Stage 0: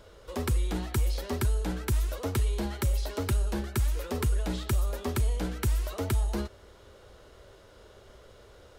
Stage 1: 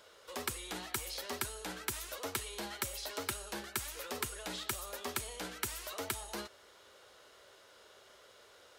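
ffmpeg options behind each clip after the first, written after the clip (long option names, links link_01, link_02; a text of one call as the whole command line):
ffmpeg -i in.wav -af "highpass=frequency=1300:poles=1,volume=1dB" out.wav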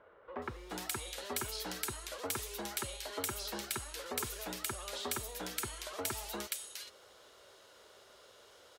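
ffmpeg -i in.wav -filter_complex "[0:a]acrossover=split=1900[link_01][link_02];[link_02]adelay=420[link_03];[link_01][link_03]amix=inputs=2:normalize=0,volume=1dB" out.wav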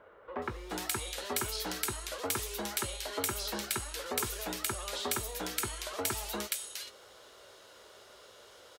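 ffmpeg -i in.wav -filter_complex "[0:a]asplit=2[link_01][link_02];[link_02]adelay=19,volume=-13dB[link_03];[link_01][link_03]amix=inputs=2:normalize=0,volume=4dB" out.wav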